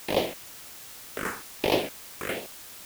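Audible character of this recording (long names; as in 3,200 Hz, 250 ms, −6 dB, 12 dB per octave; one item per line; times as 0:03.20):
phaser sweep stages 4, 1.3 Hz, lowest notch 610–1,400 Hz
a quantiser's noise floor 8 bits, dither triangular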